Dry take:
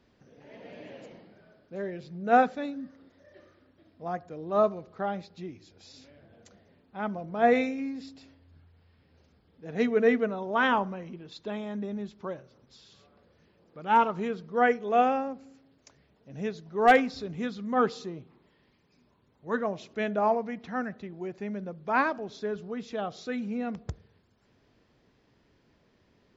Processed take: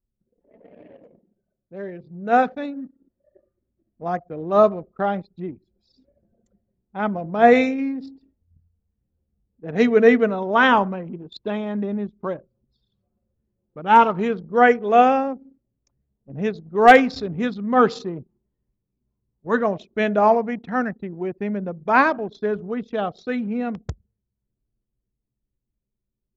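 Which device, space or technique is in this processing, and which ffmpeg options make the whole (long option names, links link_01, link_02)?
voice memo with heavy noise removal: -af "anlmdn=0.1,dynaudnorm=framelen=440:gausssize=13:maxgain=11.5dB"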